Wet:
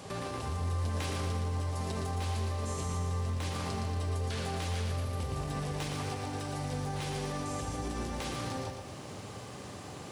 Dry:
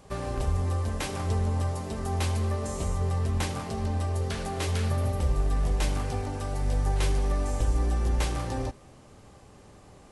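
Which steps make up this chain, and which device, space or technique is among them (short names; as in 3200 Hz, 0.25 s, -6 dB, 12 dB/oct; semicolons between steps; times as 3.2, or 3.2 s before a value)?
broadcast voice chain (HPF 82 Hz 24 dB/oct; de-esser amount 80%; compressor, threshold -39 dBFS, peak gain reduction 14 dB; bell 3900 Hz +4.5 dB 1.7 oct; limiter -35 dBFS, peak gain reduction 7.5 dB); lo-fi delay 0.116 s, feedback 55%, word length 12-bit, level -5 dB; gain +7 dB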